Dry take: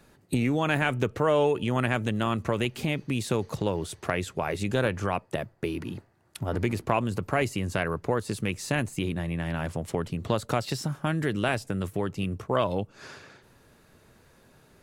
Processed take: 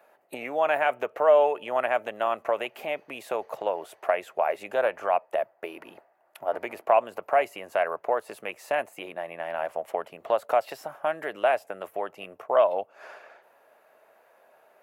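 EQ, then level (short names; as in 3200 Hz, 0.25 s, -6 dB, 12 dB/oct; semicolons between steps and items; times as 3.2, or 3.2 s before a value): resonant high-pass 650 Hz, resonance Q 3.7; band shelf 5800 Hz -11 dB; -2.0 dB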